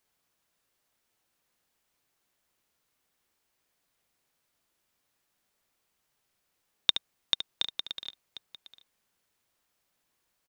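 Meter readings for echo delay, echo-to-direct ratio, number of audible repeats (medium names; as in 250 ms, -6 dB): 72 ms, -9.0 dB, 2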